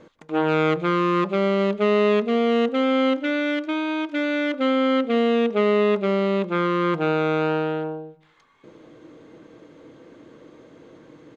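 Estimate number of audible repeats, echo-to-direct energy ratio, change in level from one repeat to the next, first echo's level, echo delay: 2, −23.5 dB, −8.0 dB, −24.0 dB, 152 ms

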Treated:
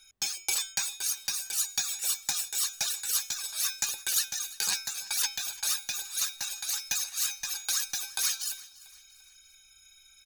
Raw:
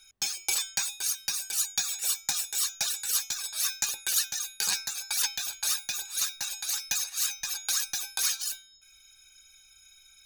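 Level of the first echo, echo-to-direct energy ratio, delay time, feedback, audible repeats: −20.0 dB, −19.0 dB, 343 ms, 43%, 3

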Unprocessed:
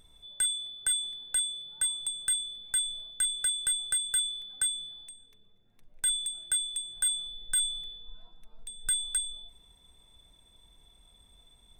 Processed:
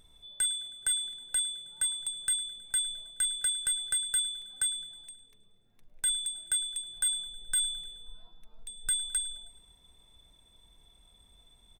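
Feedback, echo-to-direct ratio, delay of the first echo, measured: 58%, −18.5 dB, 106 ms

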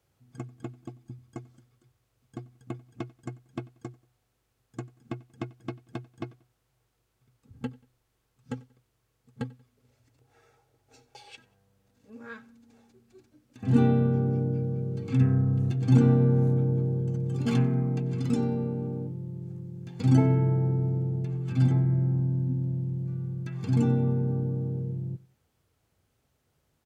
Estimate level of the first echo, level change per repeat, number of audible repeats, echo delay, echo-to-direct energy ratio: −23.0 dB, −8.5 dB, 2, 92 ms, −22.5 dB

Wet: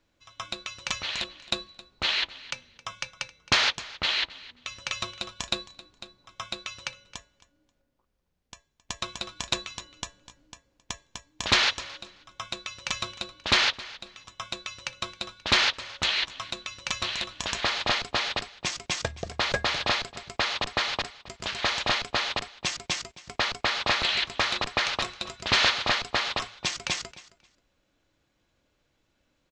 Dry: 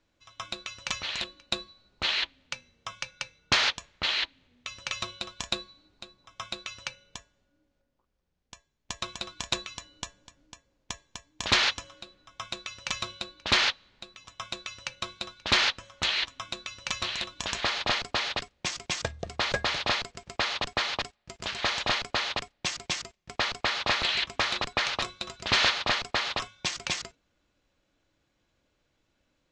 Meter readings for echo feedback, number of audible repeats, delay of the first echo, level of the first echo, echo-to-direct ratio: 18%, 2, 267 ms, −19.0 dB, −19.0 dB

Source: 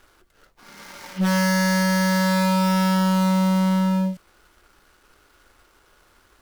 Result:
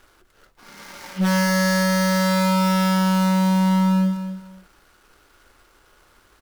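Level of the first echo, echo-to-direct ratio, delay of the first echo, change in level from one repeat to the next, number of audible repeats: −10.0 dB, −10.0 dB, 249 ms, −12.5 dB, 2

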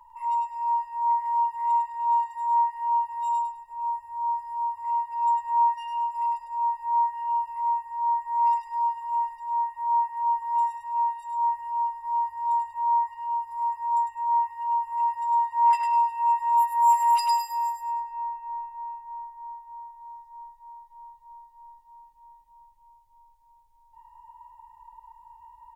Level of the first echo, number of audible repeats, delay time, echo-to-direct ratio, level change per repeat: −4.0 dB, 3, 102 ms, −3.5 dB, −10.5 dB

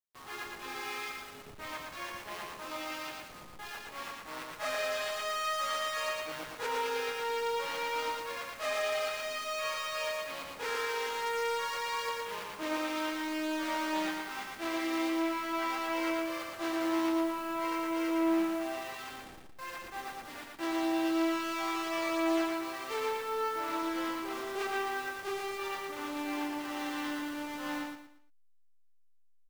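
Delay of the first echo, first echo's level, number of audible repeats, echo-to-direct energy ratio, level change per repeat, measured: 116 ms, −3.0 dB, 4, −2.5 dB, −10.0 dB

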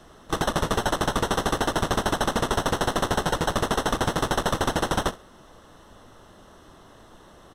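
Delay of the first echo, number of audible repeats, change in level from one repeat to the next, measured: 66 ms, 2, −12.5 dB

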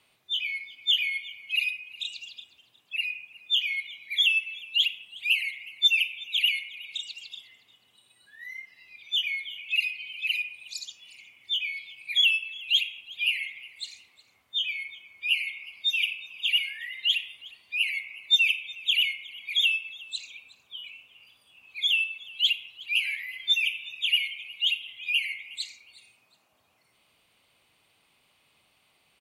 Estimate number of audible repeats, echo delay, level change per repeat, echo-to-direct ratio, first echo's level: 2, 363 ms, −11.0 dB, −20.5 dB, −21.0 dB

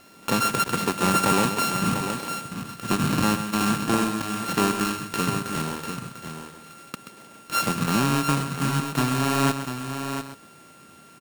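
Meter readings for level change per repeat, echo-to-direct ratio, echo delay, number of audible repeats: repeats not evenly spaced, −5.5 dB, 130 ms, 3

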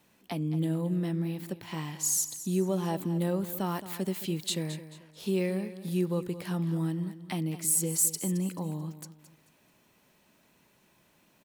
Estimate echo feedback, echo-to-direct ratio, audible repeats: 32%, −13.0 dB, 3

